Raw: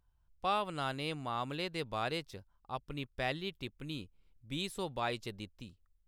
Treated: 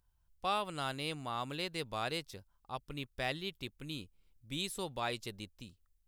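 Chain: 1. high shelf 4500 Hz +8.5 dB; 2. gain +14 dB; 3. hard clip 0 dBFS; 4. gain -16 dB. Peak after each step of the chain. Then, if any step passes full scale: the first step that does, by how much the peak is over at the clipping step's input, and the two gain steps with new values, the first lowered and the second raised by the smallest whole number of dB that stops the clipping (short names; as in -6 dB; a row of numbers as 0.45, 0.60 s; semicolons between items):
-19.0, -5.0, -5.0, -21.0 dBFS; no overload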